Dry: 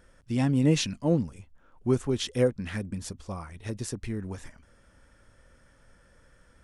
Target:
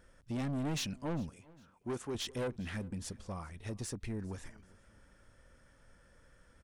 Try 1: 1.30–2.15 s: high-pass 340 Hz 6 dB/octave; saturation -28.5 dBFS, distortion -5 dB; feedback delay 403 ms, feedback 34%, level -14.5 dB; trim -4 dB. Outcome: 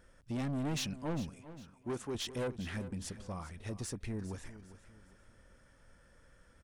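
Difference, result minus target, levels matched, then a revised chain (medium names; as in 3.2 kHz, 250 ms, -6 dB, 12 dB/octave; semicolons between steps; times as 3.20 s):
echo-to-direct +9 dB
1.30–2.15 s: high-pass 340 Hz 6 dB/octave; saturation -28.5 dBFS, distortion -5 dB; feedback delay 403 ms, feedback 34%, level -23.5 dB; trim -4 dB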